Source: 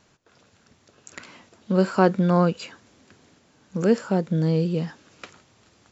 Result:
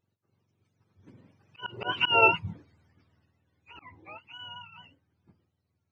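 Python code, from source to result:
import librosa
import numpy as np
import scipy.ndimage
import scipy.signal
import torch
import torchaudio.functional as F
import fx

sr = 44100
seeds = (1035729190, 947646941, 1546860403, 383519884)

y = fx.octave_mirror(x, sr, pivot_hz=710.0)
y = fx.doppler_pass(y, sr, speed_mps=27, closest_m=3.3, pass_at_s=2.1)
y = fx.auto_swell(y, sr, attack_ms=191.0)
y = y * 10.0 ** (5.0 / 20.0)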